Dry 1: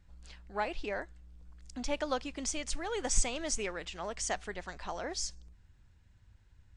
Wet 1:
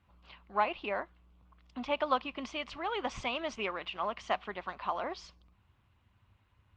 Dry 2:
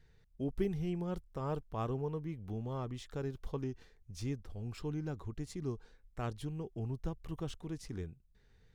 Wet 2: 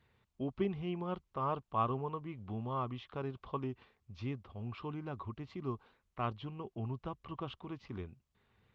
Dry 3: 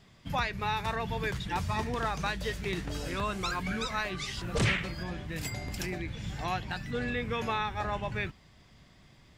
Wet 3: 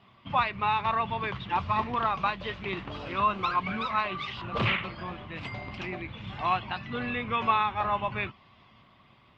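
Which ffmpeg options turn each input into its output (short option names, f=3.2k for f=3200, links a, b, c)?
-af "highpass=120,equalizer=f=160:t=q:w=4:g=-9,equalizer=f=300:t=q:w=4:g=-6,equalizer=f=460:t=q:w=4:g=-7,equalizer=f=1.1k:t=q:w=4:g=9,equalizer=f=1.7k:t=q:w=4:g=-7,equalizer=f=2.8k:t=q:w=4:g=3,lowpass=f=3.5k:w=0.5412,lowpass=f=3.5k:w=1.3066,volume=4dB" -ar 48000 -c:a libopus -b:a 24k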